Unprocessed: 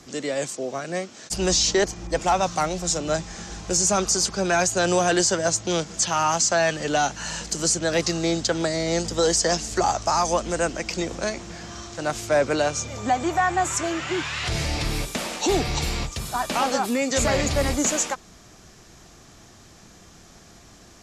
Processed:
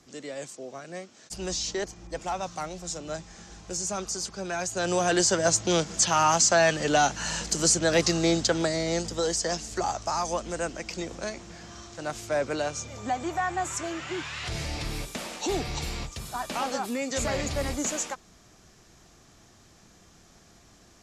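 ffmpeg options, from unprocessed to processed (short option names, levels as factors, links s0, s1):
-af "afade=t=in:st=4.6:d=0.95:silence=0.298538,afade=t=out:st=8.29:d=0.97:silence=0.446684"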